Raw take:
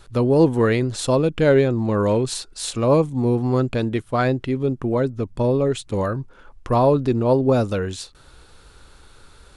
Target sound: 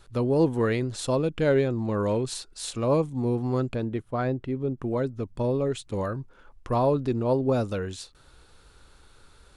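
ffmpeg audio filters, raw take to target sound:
-filter_complex "[0:a]asettb=1/sr,asplit=3[a][b][c];[a]atrim=end=3.754[d];[b]atrim=start=3.75:end=4.78,asetpts=PTS-STARTPTS,afade=t=in:d=0.004:c=qsin,afade=t=out:st=1.026:d=0.004:c=qsin,highshelf=f=2k:g=-10.5[e];[c]atrim=start=4.776[f];[d][e]acrossfade=d=0.004:c1=hsin:c2=qsin[g];[g][f]acrossfade=d=0.004:c1=qsin:c2=hsin,volume=-6.5dB"

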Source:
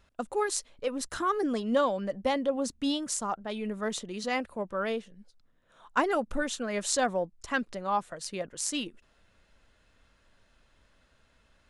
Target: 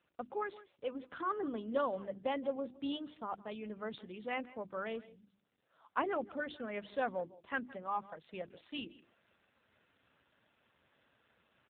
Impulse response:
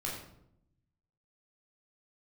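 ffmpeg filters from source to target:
-filter_complex "[0:a]areverse,acompressor=mode=upward:threshold=-50dB:ratio=2.5,areverse,lowshelf=f=67:g=-9,bandreject=f=50:t=h:w=6,bandreject=f=100:t=h:w=6,bandreject=f=150:t=h:w=6,bandreject=f=200:t=h:w=6,bandreject=f=250:t=h:w=6,bandreject=f=300:t=h:w=6,bandreject=f=350:t=h:w=6,asplit=2[a][b];[b]adelay=163.3,volume=-19dB,highshelf=f=4k:g=-3.67[c];[a][c]amix=inputs=2:normalize=0,volume=-7dB" -ar 8000 -c:a libopencore_amrnb -b:a 7400

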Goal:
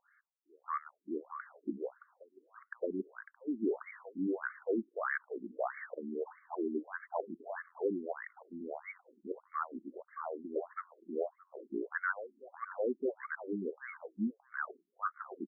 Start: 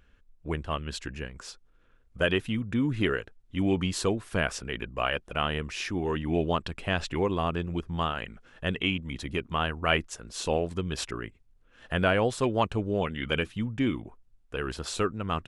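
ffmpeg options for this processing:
-filter_complex "[0:a]dynaudnorm=f=290:g=5:m=4.5dB,acrossover=split=930[a][b];[a]adelay=620[c];[c][b]amix=inputs=2:normalize=0,areverse,acompressor=threshold=-34dB:ratio=4,areverse,afftfilt=real='re*between(b*sr/1024,260*pow(1600/260,0.5+0.5*sin(2*PI*1.6*pts/sr))/1.41,260*pow(1600/260,0.5+0.5*sin(2*PI*1.6*pts/sr))*1.41)':imag='im*between(b*sr/1024,260*pow(1600/260,0.5+0.5*sin(2*PI*1.6*pts/sr))/1.41,260*pow(1600/260,0.5+0.5*sin(2*PI*1.6*pts/sr))*1.41)':win_size=1024:overlap=0.75,volume=4.5dB"

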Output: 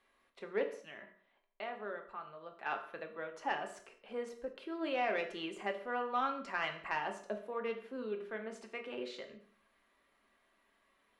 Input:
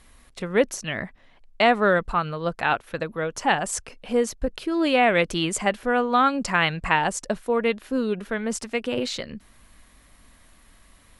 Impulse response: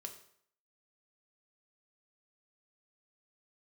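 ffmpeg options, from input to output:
-filter_complex "[0:a]asettb=1/sr,asplit=3[a][b][c];[a]atrim=end=0.634[d];[b]atrim=start=0.63:end=2.66,asetpts=PTS-STARTPTS,afade=t=in:d=0.004:c=qsin,afade=t=out:st=2.026:d=0.004:c=qsin,acompressor=threshold=-44dB:ratio=1.5[e];[c]atrim=start=2.656[f];[d][e]acrossfade=d=0.004:c1=hsin:c2=qsin[g];[g][f]acrossfade=d=0.004:c1=qsin:c2=hsin,flanger=delay=1.8:depth=3:regen=89:speed=0.21:shape=sinusoidal,deesser=0.6,acrossover=split=240 3600:gain=0.0794 1 0.178[h][i][j];[h][i][j]amix=inputs=3:normalize=0,asoftclip=type=tanh:threshold=-12dB[k];[1:a]atrim=start_sample=2205,afade=t=out:st=0.28:d=0.01,atrim=end_sample=12789[l];[k][l]afir=irnorm=-1:irlink=0,volume=-4.5dB"

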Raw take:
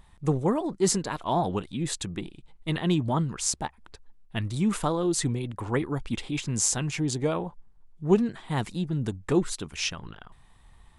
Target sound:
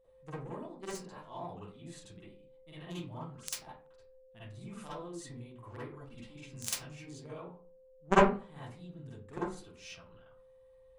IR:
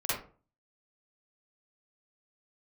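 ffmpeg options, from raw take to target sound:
-filter_complex "[0:a]aeval=exprs='0.422*(cos(1*acos(clip(val(0)/0.422,-1,1)))-cos(1*PI/2))+0.211*(cos(3*acos(clip(val(0)/0.422,-1,1)))-cos(3*PI/2))+0.0473*(cos(5*acos(clip(val(0)/0.422,-1,1)))-cos(5*PI/2))':c=same,aeval=exprs='val(0)+0.000794*sin(2*PI*520*n/s)':c=same[a];[1:a]atrim=start_sample=2205[b];[a][b]afir=irnorm=-1:irlink=0"

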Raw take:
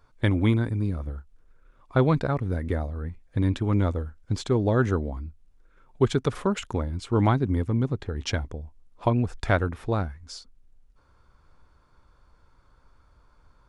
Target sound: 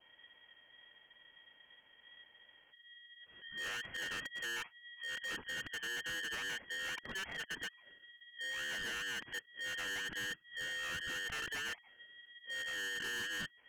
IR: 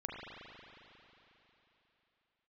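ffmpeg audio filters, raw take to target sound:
-filter_complex "[0:a]areverse,acrossover=split=240|610[a][b][c];[a]acompressor=threshold=-35dB:ratio=4[d];[b]acompressor=threshold=-34dB:ratio=4[e];[c]acompressor=threshold=-33dB:ratio=4[f];[d][e][f]amix=inputs=3:normalize=0,lowpass=f=2.2k:t=q:w=0.5098,lowpass=f=2.2k:t=q:w=0.6013,lowpass=f=2.2k:t=q:w=0.9,lowpass=f=2.2k:t=q:w=2.563,afreqshift=-2600,aeval=exprs='val(0)*sin(2*PI*670*n/s)':c=same,acrossover=split=270[g][h];[g]acontrast=84[i];[i][h]amix=inputs=2:normalize=0,alimiter=limit=-23.5dB:level=0:latency=1:release=110,adynamicequalizer=threshold=0.00316:dfrequency=1900:dqfactor=3.1:tfrequency=1900:tqfactor=3.1:attack=5:release=100:ratio=0.375:range=2.5:mode=boostabove:tftype=bell,asoftclip=type=hard:threshold=-35.5dB,volume=-2.5dB"

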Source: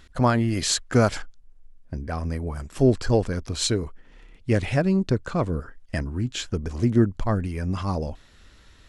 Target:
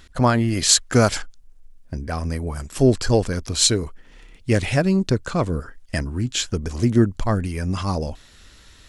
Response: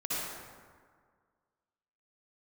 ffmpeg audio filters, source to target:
-af "asetnsamples=n=441:p=0,asendcmd='0.69 highshelf g 9',highshelf=f=3.6k:g=4,volume=2.5dB"

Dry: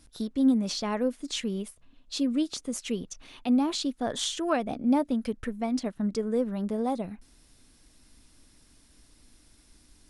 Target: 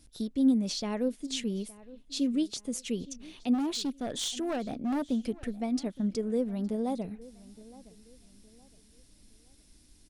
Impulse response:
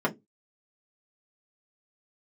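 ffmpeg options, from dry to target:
-filter_complex "[0:a]equalizer=f=1.2k:t=o:w=1.5:g=-8,asplit=3[a][b][c];[a]afade=t=out:st=3.53:d=0.02[d];[b]asoftclip=type=hard:threshold=-26.5dB,afade=t=in:st=3.53:d=0.02,afade=t=out:st=5.02:d=0.02[e];[c]afade=t=in:st=5.02:d=0.02[f];[d][e][f]amix=inputs=3:normalize=0,asplit=2[g][h];[h]adelay=866,lowpass=f=4.2k:p=1,volume=-20dB,asplit=2[i][j];[j]adelay=866,lowpass=f=4.2k:p=1,volume=0.34,asplit=2[k][l];[l]adelay=866,lowpass=f=4.2k:p=1,volume=0.34[m];[g][i][k][m]amix=inputs=4:normalize=0,volume=-1dB"

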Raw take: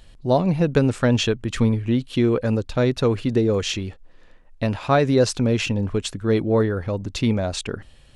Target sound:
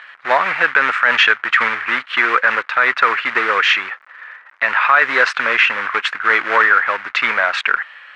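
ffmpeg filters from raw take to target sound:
-filter_complex "[0:a]asplit=2[a][b];[b]asoftclip=type=tanh:threshold=-22.5dB,volume=-7dB[c];[a][c]amix=inputs=2:normalize=0,acrusher=bits=4:mode=log:mix=0:aa=0.000001,asuperpass=centerf=1600:order=4:qfactor=1.7,alimiter=level_in=24.5dB:limit=-1dB:release=50:level=0:latency=1,volume=-1dB"

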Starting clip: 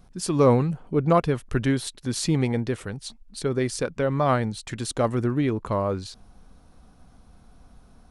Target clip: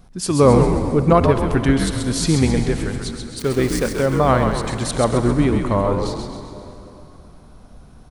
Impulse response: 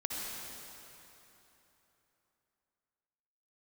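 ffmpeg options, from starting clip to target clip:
-filter_complex "[0:a]asettb=1/sr,asplit=3[a][b][c];[a]atrim=end=3.394[d];[b]atrim=start=3.39:end=4.01,asetpts=PTS-STARTPTS,afade=t=in:d=0.004:c=qsin,afade=t=out:st=0.616:d=0.004:c=qsin,aeval=exprs='val(0)*gte(abs(val(0)),0.0237)':c=same[e];[c]atrim=start=4.006[f];[d][e]acrossfade=d=0.004:c1=hsin:c2=qsin[g];[g][f]acrossfade=d=0.004:c1=qsin:c2=hsin,asplit=7[h][i][j][k][l][m][n];[i]adelay=133,afreqshift=-79,volume=-5.5dB[o];[j]adelay=266,afreqshift=-158,volume=-11.7dB[p];[k]adelay=399,afreqshift=-237,volume=-17.9dB[q];[l]adelay=532,afreqshift=-316,volume=-24.1dB[r];[m]adelay=665,afreqshift=-395,volume=-30.3dB[s];[n]adelay=798,afreqshift=-474,volume=-36.5dB[t];[h][o][p][q][r][s][t]amix=inputs=7:normalize=0,asplit=2[u][v];[1:a]atrim=start_sample=2205[w];[v][w]afir=irnorm=-1:irlink=0,volume=-10dB[x];[u][x]amix=inputs=2:normalize=0,volume=3dB"

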